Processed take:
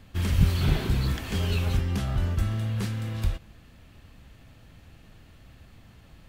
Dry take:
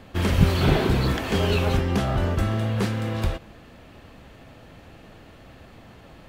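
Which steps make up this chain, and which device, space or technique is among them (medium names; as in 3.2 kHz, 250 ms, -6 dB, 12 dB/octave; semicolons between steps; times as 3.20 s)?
smiley-face EQ (bass shelf 150 Hz +7.5 dB; peaking EQ 530 Hz -7 dB 2.3 oct; treble shelf 5.6 kHz +6 dB); trim -6.5 dB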